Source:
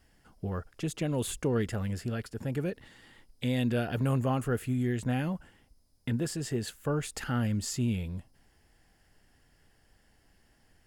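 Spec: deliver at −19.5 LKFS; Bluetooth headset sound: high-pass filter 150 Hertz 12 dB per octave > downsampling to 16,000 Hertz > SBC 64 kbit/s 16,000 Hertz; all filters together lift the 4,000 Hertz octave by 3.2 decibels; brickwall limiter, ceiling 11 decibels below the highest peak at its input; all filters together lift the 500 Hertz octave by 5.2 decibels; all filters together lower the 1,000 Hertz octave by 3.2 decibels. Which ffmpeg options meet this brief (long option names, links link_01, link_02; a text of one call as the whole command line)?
ffmpeg -i in.wav -af "equalizer=frequency=500:width_type=o:gain=8,equalizer=frequency=1000:width_type=o:gain=-8.5,equalizer=frequency=4000:width_type=o:gain=4.5,alimiter=level_in=2dB:limit=-24dB:level=0:latency=1,volume=-2dB,highpass=150,aresample=16000,aresample=44100,volume=17.5dB" -ar 16000 -c:a sbc -b:a 64k out.sbc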